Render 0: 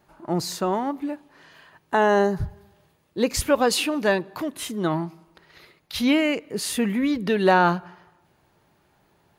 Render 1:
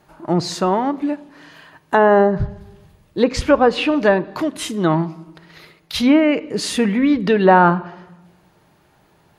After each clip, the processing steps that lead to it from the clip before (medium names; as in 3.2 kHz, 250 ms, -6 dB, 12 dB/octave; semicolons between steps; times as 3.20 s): low-pass that closes with the level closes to 1.7 kHz, closed at -16 dBFS; simulated room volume 3600 m³, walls furnished, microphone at 0.52 m; trim +6.5 dB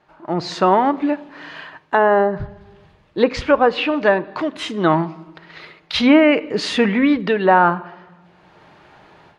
low-pass 3.5 kHz 12 dB/octave; bass shelf 330 Hz -9.5 dB; level rider gain up to 13 dB; trim -1 dB